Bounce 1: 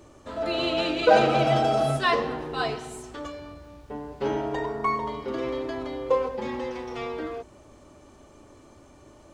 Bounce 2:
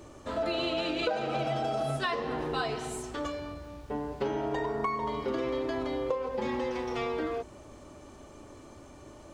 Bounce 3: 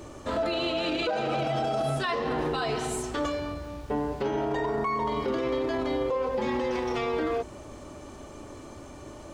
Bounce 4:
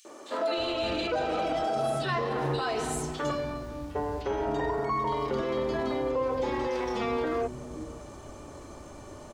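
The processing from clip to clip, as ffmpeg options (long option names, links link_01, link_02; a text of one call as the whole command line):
ffmpeg -i in.wav -af "acompressor=threshold=-29dB:ratio=16,volume=2dB" out.wav
ffmpeg -i in.wav -af "alimiter=level_in=2.5dB:limit=-24dB:level=0:latency=1:release=19,volume=-2.5dB,volume=6dB" out.wav
ffmpeg -i in.wav -filter_complex "[0:a]acrossover=split=270|2700[link_01][link_02][link_03];[link_02]adelay=50[link_04];[link_01]adelay=570[link_05];[link_05][link_04][link_03]amix=inputs=3:normalize=0" out.wav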